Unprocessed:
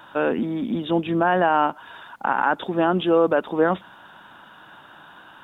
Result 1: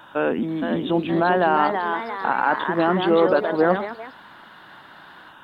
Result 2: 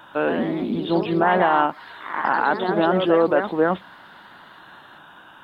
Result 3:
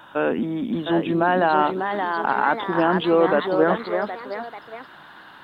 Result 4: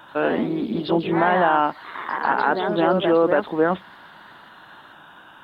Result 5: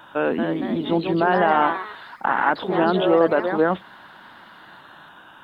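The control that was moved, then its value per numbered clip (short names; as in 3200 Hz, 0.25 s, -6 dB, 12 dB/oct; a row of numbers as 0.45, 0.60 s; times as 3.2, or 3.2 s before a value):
echoes that change speed, time: 484, 139, 728, 86, 247 ms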